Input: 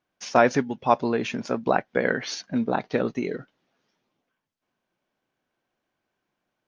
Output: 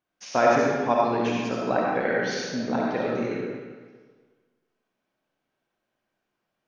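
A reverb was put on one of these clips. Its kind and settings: algorithmic reverb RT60 1.5 s, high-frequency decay 0.85×, pre-delay 25 ms, DRR -4 dB; trim -5.5 dB

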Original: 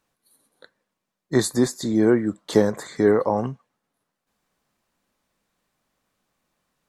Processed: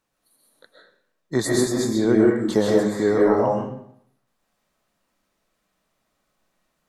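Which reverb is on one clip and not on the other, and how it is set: algorithmic reverb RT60 0.68 s, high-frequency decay 0.8×, pre-delay 90 ms, DRR -3.5 dB; trim -3 dB

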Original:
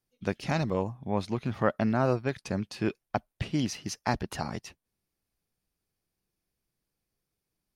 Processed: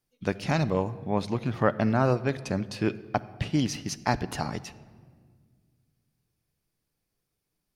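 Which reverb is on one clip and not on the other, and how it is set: simulated room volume 2500 m³, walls mixed, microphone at 0.38 m; trim +2.5 dB

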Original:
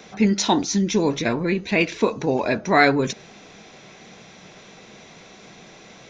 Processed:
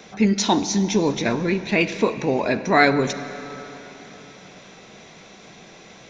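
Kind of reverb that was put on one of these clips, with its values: algorithmic reverb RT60 4 s, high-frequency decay 0.85×, pre-delay 5 ms, DRR 11.5 dB

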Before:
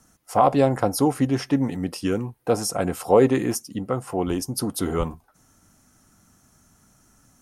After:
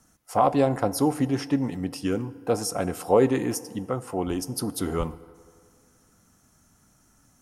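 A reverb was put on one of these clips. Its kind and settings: FDN reverb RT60 2.2 s, low-frequency decay 0.75×, high-frequency decay 0.55×, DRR 16 dB; trim -3 dB

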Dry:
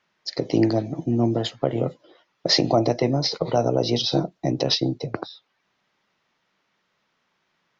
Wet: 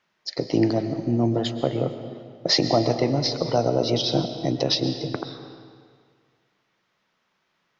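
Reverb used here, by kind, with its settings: algorithmic reverb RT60 1.9 s, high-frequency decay 0.85×, pre-delay 85 ms, DRR 9 dB; trim -1 dB

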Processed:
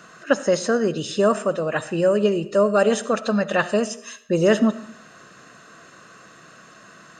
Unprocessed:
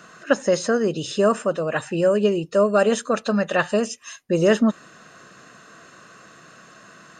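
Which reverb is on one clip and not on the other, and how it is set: algorithmic reverb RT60 0.7 s, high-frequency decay 0.8×, pre-delay 30 ms, DRR 15 dB

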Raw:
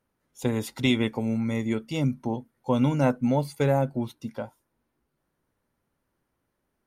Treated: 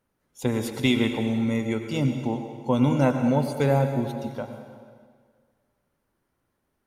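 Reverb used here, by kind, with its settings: plate-style reverb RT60 1.8 s, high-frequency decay 0.9×, pre-delay 80 ms, DRR 6 dB; trim +1 dB

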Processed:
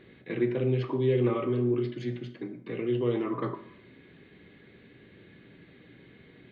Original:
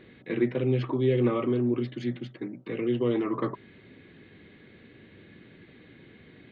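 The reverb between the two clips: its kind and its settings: plate-style reverb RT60 0.64 s, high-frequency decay 0.8×, DRR 7 dB; trim -2.5 dB

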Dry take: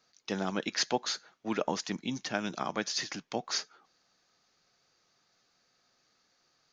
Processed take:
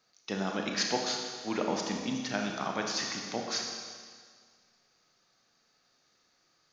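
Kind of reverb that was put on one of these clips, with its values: Schroeder reverb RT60 1.8 s, combs from 27 ms, DRR 1 dB; trim -1.5 dB

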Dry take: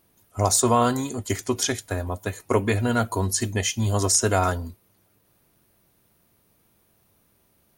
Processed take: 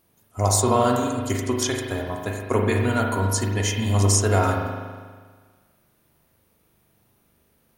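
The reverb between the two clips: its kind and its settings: spring tank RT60 1.6 s, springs 40 ms, chirp 70 ms, DRR 0.5 dB; trim -1.5 dB

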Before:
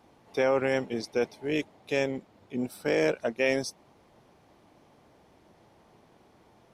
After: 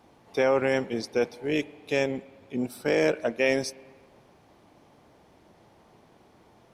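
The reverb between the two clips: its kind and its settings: spring tank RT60 1.5 s, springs 35/49 ms, chirp 25 ms, DRR 20 dB; trim +2 dB

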